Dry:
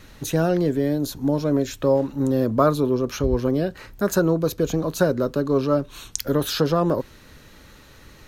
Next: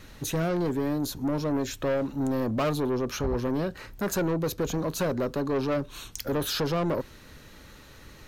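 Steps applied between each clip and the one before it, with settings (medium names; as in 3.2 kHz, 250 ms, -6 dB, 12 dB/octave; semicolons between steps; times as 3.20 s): saturation -21 dBFS, distortion -9 dB; trim -1.5 dB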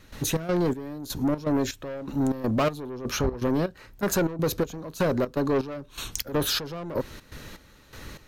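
in parallel at +2 dB: compression, threshold -34 dBFS, peak gain reduction 9.5 dB; on the sum: trance gate ".xx.xx.." 123 bpm -12 dB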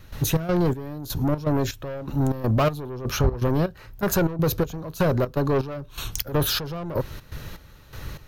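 graphic EQ 125/250/500/1000/2000/4000/8000 Hz +3/-9/-4/-3/-6/-4/-9 dB; trim +8 dB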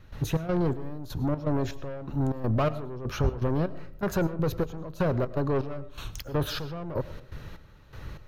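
low-pass 2.6 kHz 6 dB/octave; reverberation RT60 0.60 s, pre-delay 65 ms, DRR 16.5 dB; trim -4.5 dB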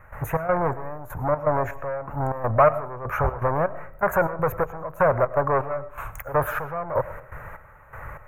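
FFT filter 130 Hz 0 dB, 240 Hz -7 dB, 350 Hz -5 dB, 580 Hz +11 dB, 1.1 kHz +14 dB, 2.2 kHz +9 dB, 3.2 kHz -17 dB, 4.7 kHz -30 dB, 7 kHz -2 dB, 13 kHz +7 dB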